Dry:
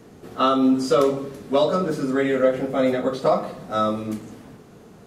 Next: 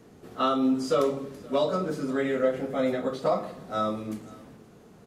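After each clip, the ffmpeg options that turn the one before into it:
-af "aecho=1:1:522:0.0668,volume=-6dB"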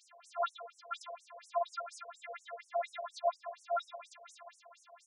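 -af "afftfilt=real='hypot(re,im)*cos(PI*b)':imag='0':win_size=512:overlap=0.75,acompressor=threshold=-42dB:ratio=2.5,afftfilt=real='re*between(b*sr/1024,610*pow(8000/610,0.5+0.5*sin(2*PI*4.2*pts/sr))/1.41,610*pow(8000/610,0.5+0.5*sin(2*PI*4.2*pts/sr))*1.41)':imag='im*between(b*sr/1024,610*pow(8000/610,0.5+0.5*sin(2*PI*4.2*pts/sr))/1.41,610*pow(8000/610,0.5+0.5*sin(2*PI*4.2*pts/sr))*1.41)':win_size=1024:overlap=0.75,volume=11.5dB"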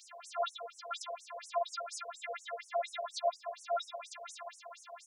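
-filter_complex "[0:a]acrossover=split=500|3000[a][b][c];[b]acompressor=threshold=-53dB:ratio=2.5[d];[a][d][c]amix=inputs=3:normalize=0,volume=8.5dB"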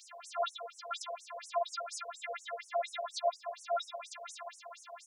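-af "highpass=400,volume=1dB"

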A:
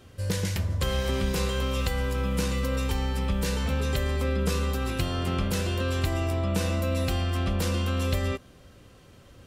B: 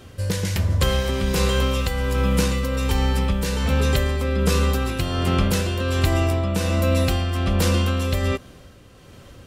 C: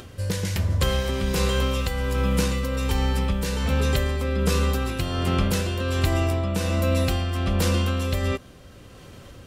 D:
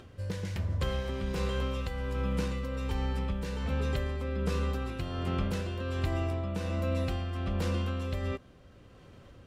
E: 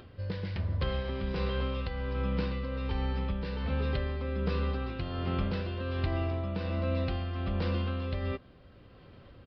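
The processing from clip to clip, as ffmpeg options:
-af "tremolo=f=1.3:d=0.41,volume=8dB"
-af "acompressor=mode=upward:threshold=-35dB:ratio=2.5,volume=-2.5dB"
-af "lowpass=f=2.6k:p=1,volume=-8.5dB"
-af "aresample=11025,aresample=44100"

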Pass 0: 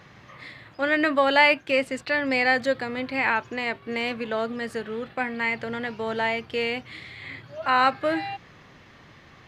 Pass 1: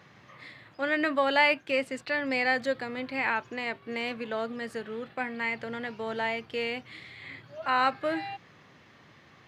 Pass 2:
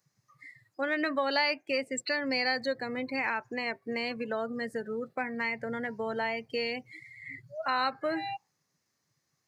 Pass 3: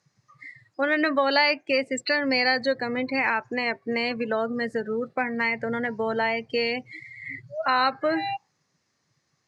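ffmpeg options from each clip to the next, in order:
-af "highpass=100,volume=-5dB"
-af "afftdn=nr=30:nf=-38,acompressor=threshold=-35dB:ratio=2,aexciter=amount=12.6:drive=5.9:freq=4.9k,volume=3.5dB"
-af "lowpass=6k,volume=7dB"

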